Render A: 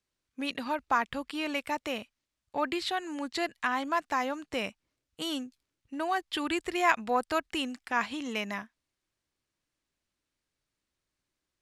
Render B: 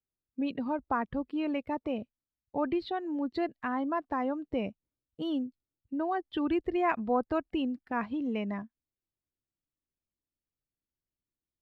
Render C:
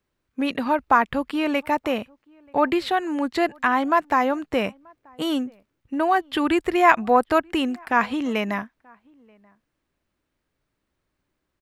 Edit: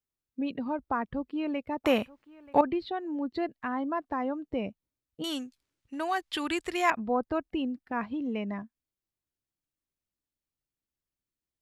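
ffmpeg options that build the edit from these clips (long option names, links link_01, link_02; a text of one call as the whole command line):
ffmpeg -i take0.wav -i take1.wav -i take2.wav -filter_complex "[1:a]asplit=3[link_01][link_02][link_03];[link_01]atrim=end=1.842[link_04];[2:a]atrim=start=1.838:end=2.612[link_05];[link_02]atrim=start=2.608:end=5.242[link_06];[0:a]atrim=start=5.238:end=6.902[link_07];[link_03]atrim=start=6.898[link_08];[link_04][link_05]acrossfade=duration=0.004:curve1=hsin:curve2=hsin[link_09];[link_09][link_06]acrossfade=duration=0.004:curve1=hsin:curve2=hsin[link_10];[link_10][link_07]acrossfade=duration=0.004:curve1=hsin:curve2=hsin[link_11];[link_11][link_08]acrossfade=duration=0.004:curve1=hsin:curve2=hsin" out.wav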